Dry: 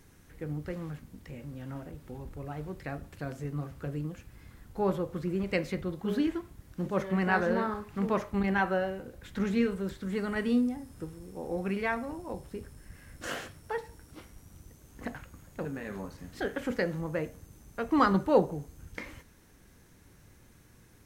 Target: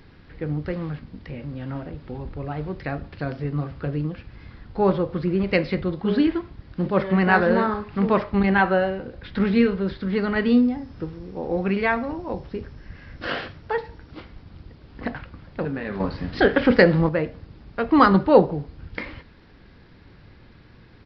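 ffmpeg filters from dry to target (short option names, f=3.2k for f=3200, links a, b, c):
-filter_complex "[0:a]aresample=11025,aresample=44100,asettb=1/sr,asplit=3[a][b][c];[a]atrim=end=16.004[d];[b]atrim=start=16:end=17.09,asetpts=PTS-STARTPTS,afade=t=in:d=0.004:c=qsin,afade=t=out:st=1.086:d=0.004:c=qsin,acontrast=72[e];[c]atrim=start=17.086[f];[d][e]acrossfade=d=0.004:c1=hsin:c2=qsin[g];[g][f]acrossfade=d=0.004:c1=qsin:c2=hsin,volume=9dB"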